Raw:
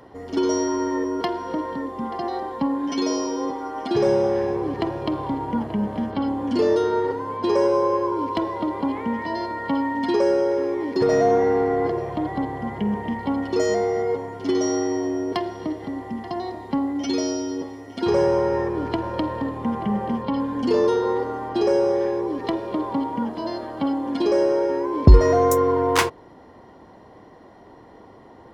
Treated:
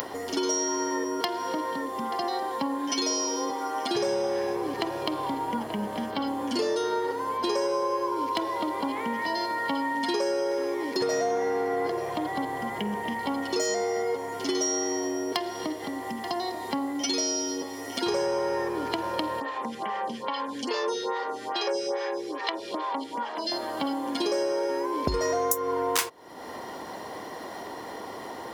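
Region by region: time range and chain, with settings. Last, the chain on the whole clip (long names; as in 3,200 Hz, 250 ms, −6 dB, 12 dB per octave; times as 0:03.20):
0:19.40–0:23.52: low-pass filter 4,700 Hz + spectral tilt +3 dB per octave + phaser with staggered stages 2.4 Hz
whole clip: upward compression, threshold −24 dBFS; RIAA equalisation recording; downward compressor 4 to 1, threshold −24 dBFS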